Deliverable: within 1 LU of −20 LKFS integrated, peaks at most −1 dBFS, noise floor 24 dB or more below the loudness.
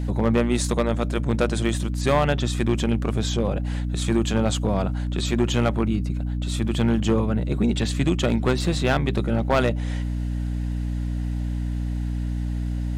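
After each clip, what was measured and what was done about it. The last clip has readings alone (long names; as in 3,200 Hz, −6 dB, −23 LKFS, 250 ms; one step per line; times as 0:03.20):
share of clipped samples 0.5%; peaks flattened at −12.5 dBFS; mains hum 60 Hz; hum harmonics up to 300 Hz; level of the hum −23 dBFS; integrated loudness −24.0 LKFS; sample peak −12.5 dBFS; target loudness −20.0 LKFS
→ clipped peaks rebuilt −12.5 dBFS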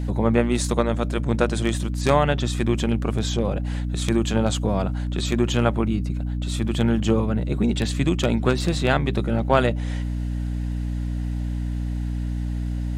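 share of clipped samples 0.0%; mains hum 60 Hz; hum harmonics up to 300 Hz; level of the hum −23 dBFS
→ hum removal 60 Hz, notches 5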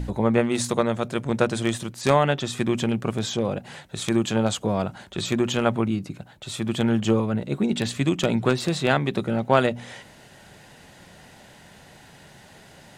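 mains hum none found; integrated loudness −24.0 LKFS; sample peak −3.5 dBFS; target loudness −20.0 LKFS
→ level +4 dB
brickwall limiter −1 dBFS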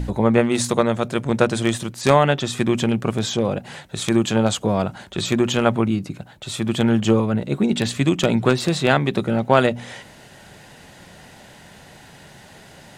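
integrated loudness −20.0 LKFS; sample peak −1.0 dBFS; background noise floor −46 dBFS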